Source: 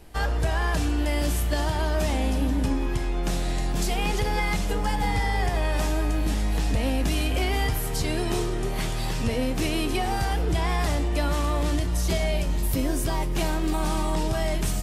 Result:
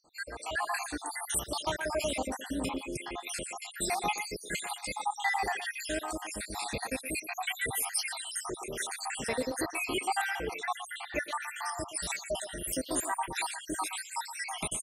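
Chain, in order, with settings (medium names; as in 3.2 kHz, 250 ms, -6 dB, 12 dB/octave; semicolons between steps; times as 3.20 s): random holes in the spectrogram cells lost 77%; treble shelf 4.2 kHz -12 dB; speakerphone echo 120 ms, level -10 dB; level rider gain up to 7 dB; high-pass 1.2 kHz 6 dB/octave; peaking EQ 9.2 kHz +14 dB 0.62 oct, from 10.26 s +5 dB, from 11.48 s +14.5 dB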